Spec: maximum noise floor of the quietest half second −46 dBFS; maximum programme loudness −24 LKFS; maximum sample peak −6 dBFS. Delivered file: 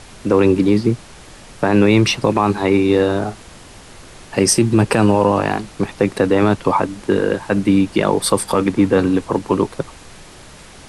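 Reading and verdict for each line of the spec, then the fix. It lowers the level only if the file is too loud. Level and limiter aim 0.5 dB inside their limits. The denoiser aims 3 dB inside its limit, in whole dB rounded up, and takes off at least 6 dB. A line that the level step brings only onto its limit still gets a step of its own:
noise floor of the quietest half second −40 dBFS: out of spec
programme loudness −16.5 LKFS: out of spec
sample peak −3.5 dBFS: out of spec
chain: level −8 dB

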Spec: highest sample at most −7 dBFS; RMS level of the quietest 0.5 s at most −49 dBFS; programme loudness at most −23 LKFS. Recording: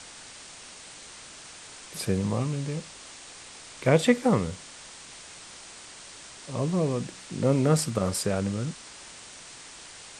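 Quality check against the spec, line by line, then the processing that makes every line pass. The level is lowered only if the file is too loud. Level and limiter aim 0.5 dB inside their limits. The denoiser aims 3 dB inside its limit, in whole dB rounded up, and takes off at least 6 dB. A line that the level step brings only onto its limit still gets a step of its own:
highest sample −6.0 dBFS: out of spec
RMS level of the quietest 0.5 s −46 dBFS: out of spec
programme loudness −27.0 LKFS: in spec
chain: broadband denoise 6 dB, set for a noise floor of −46 dBFS
brickwall limiter −7.5 dBFS

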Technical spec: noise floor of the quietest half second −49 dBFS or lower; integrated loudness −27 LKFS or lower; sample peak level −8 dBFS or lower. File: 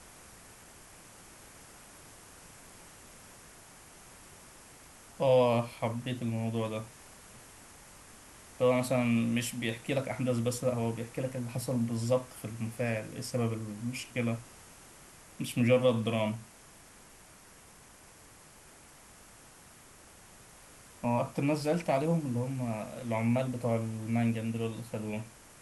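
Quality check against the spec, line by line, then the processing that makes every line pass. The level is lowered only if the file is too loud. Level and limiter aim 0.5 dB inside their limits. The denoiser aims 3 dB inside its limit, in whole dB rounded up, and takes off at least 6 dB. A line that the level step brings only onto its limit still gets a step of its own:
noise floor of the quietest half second −55 dBFS: in spec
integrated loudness −32.0 LKFS: in spec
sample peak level −14.0 dBFS: in spec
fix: no processing needed

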